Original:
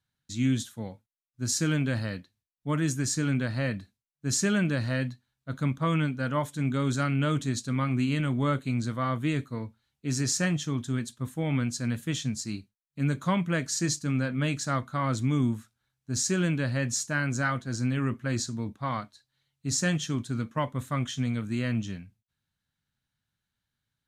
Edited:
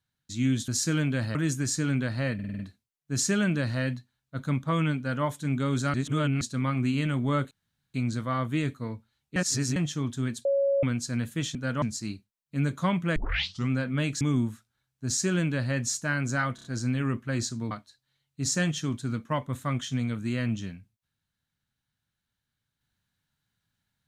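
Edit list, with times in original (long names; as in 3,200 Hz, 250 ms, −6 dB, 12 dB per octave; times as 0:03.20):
0:00.68–0:01.42: remove
0:02.09–0:02.74: remove
0:03.73: stutter 0.05 s, 6 plays
0:06.11–0:06.38: duplicate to 0:12.26
0:07.08–0:07.55: reverse
0:08.65: splice in room tone 0.43 s
0:10.07–0:10.47: reverse
0:11.16–0:11.54: beep over 555 Hz −21 dBFS
0:13.60: tape start 0.54 s
0:14.65–0:15.27: remove
0:17.61: stutter 0.03 s, 4 plays
0:18.68–0:18.97: remove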